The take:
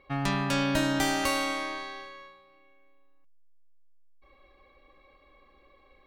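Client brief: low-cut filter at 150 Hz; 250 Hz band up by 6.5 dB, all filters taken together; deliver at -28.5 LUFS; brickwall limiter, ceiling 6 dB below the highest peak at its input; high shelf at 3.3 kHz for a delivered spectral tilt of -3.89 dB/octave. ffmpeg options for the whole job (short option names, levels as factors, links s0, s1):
-af "highpass=150,equalizer=f=250:t=o:g=8,highshelf=f=3300:g=5.5,volume=0.75,alimiter=limit=0.119:level=0:latency=1"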